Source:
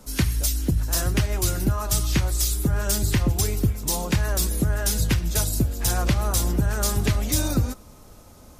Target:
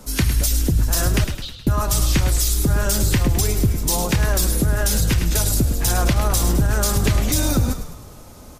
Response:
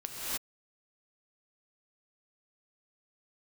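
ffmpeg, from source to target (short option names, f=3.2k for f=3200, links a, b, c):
-filter_complex "[0:a]asettb=1/sr,asplit=3[a][b][c];[a]atrim=end=1.244[d];[b]atrim=start=1.24:end=1.67,asetpts=PTS-STARTPTS,afade=t=in:d=0.004:c=qsin,afade=t=out:st=0.426:d=0.004:c=qsin,asuperpass=centerf=3500:order=4:qfactor=3.1[e];[c]atrim=start=1.666[f];[d][e]acrossfade=d=0.004:c1=hsin:c2=qsin[g];[g][f]acrossfade=d=0.004:c1=qsin:c2=hsin,asplit=6[h][i][j][k][l][m];[i]adelay=105,afreqshift=-39,volume=-11dB[n];[j]adelay=210,afreqshift=-78,volume=-16.8dB[o];[k]adelay=315,afreqshift=-117,volume=-22.7dB[p];[l]adelay=420,afreqshift=-156,volume=-28.5dB[q];[m]adelay=525,afreqshift=-195,volume=-34.4dB[r];[h][n][o][p][q][r]amix=inputs=6:normalize=0,alimiter=level_in=14dB:limit=-1dB:release=50:level=0:latency=1,volume=-8dB"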